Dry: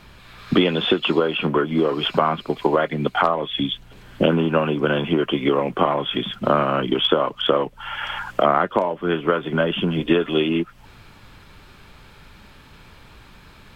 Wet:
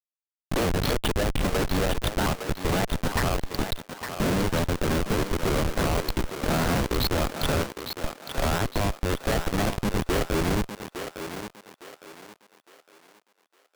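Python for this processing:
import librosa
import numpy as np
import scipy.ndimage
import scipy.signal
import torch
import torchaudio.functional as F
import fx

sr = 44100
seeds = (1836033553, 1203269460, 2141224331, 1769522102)

y = fx.pitch_ramps(x, sr, semitones=5.0, every_ms=323)
y = fx.schmitt(y, sr, flips_db=-19.0)
y = fx.echo_thinned(y, sr, ms=859, feedback_pct=37, hz=330.0, wet_db=-7)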